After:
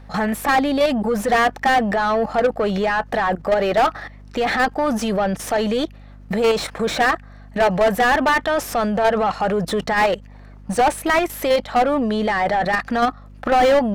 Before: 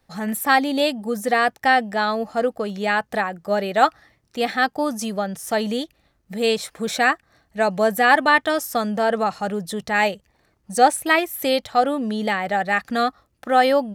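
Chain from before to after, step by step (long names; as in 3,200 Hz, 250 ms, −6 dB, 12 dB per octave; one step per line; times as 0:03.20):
output level in coarse steps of 18 dB
mid-hump overdrive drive 33 dB, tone 1,200 Hz, clips at −7 dBFS
mains hum 50 Hz, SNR 22 dB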